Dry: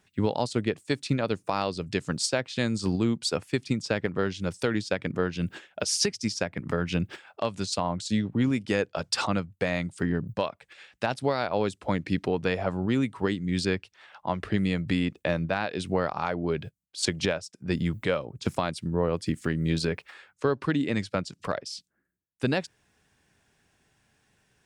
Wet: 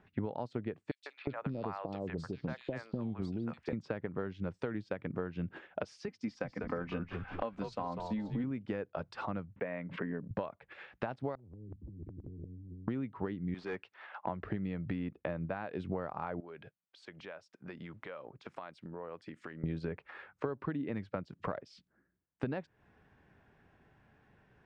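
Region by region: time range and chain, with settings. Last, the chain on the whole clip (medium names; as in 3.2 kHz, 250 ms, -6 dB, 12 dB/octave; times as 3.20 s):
0.91–3.73 s: compression 3:1, threshold -27 dBFS + three bands offset in time highs, mids, lows 150/360 ms, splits 630/2900 Hz
6.08–8.44 s: high-pass 200 Hz 6 dB/octave + comb 3.9 ms, depth 57% + frequency-shifting echo 195 ms, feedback 31%, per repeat -81 Hz, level -8.5 dB
9.56–10.31 s: cabinet simulation 260–2500 Hz, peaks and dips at 350 Hz -8 dB, 780 Hz -8 dB, 1.3 kHz -7 dB + swell ahead of each attack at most 120 dB/s
11.35–12.88 s: inverse Chebyshev low-pass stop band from 600 Hz, stop band 80 dB + compressor with a negative ratio -50 dBFS + spectrum-flattening compressor 4:1
13.54–14.27 s: frequency weighting A + hard clipper -30 dBFS
16.40–19.64 s: high-pass 1.1 kHz 6 dB/octave + compression 4:1, threshold -46 dBFS
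whole clip: compression 8:1, threshold -38 dBFS; low-pass 1.6 kHz 12 dB/octave; trim +4.5 dB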